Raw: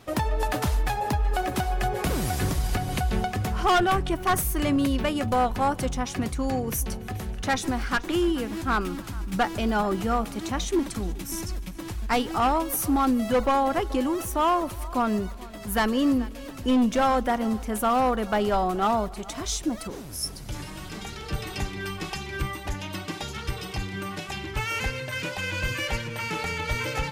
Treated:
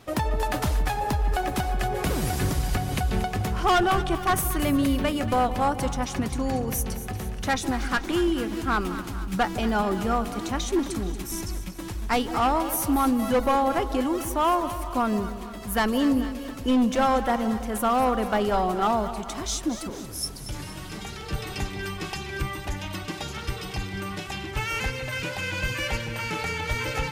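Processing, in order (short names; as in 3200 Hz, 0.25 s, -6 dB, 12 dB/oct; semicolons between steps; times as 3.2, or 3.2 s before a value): split-band echo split 940 Hz, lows 0.165 s, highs 0.233 s, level -12 dB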